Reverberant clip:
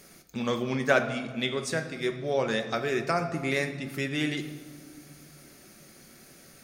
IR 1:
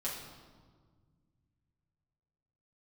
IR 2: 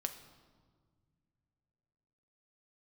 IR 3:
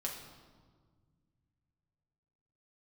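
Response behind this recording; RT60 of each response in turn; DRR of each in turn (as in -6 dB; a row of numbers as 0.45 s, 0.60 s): 2; 1.6 s, 1.7 s, 1.6 s; -7.0 dB, 6.0 dB, -2.0 dB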